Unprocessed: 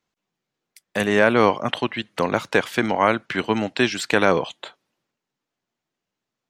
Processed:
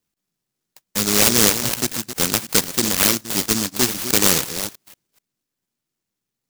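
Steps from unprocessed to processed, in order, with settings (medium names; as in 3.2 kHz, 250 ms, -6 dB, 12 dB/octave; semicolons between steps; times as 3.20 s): chunks repeated in reverse 247 ms, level -10 dB; delay time shaken by noise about 5.8 kHz, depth 0.46 ms; trim +1 dB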